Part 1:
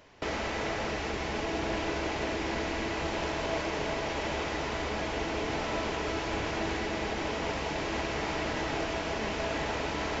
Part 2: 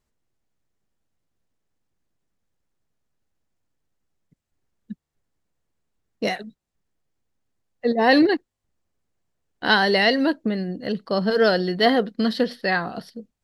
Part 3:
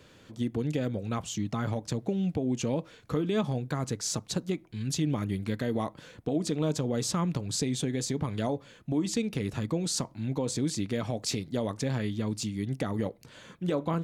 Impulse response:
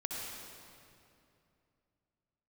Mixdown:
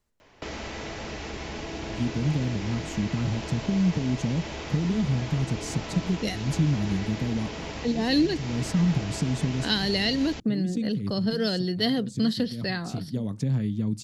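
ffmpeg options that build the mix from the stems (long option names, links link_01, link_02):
-filter_complex "[0:a]adelay=200,volume=0.5dB[link_01];[1:a]volume=0dB,asplit=2[link_02][link_03];[2:a]equalizer=frequency=160:width=0.71:gain=14.5,adelay=1600,volume=-6dB[link_04];[link_03]apad=whole_len=689696[link_05];[link_04][link_05]sidechaincompress=threshold=-30dB:ratio=8:attack=16:release=214[link_06];[link_01][link_02][link_06]amix=inputs=3:normalize=0,acrossover=split=300|3000[link_07][link_08][link_09];[link_08]acompressor=threshold=-39dB:ratio=3[link_10];[link_07][link_10][link_09]amix=inputs=3:normalize=0"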